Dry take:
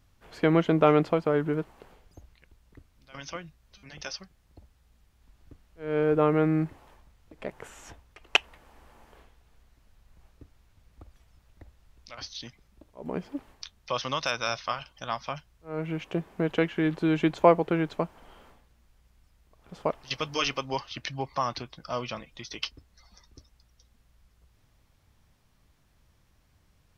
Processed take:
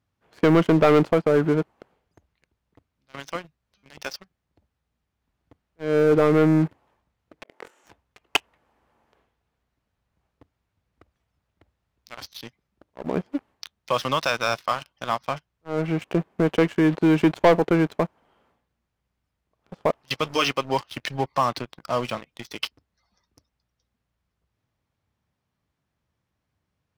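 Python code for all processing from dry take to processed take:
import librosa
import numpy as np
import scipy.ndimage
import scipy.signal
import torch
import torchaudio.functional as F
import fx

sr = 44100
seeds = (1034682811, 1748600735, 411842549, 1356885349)

y = fx.chain(x, sr, fx.over_compress(threshold_db=-42.0, ratio=-0.5),
    fx.ladder_highpass(hz=240.0, resonance_pct=25),
    fx.room_flutter(wall_m=4.1, rt60_s=0.24), at=(7.43, 7.84))
y = scipy.signal.sosfilt(scipy.signal.butter(2, 91.0, 'highpass', fs=sr, output='sos'), y)
y = fx.high_shelf(y, sr, hz=4100.0, db=-8.5)
y = fx.leveller(y, sr, passes=3)
y = F.gain(torch.from_numpy(y), -3.5).numpy()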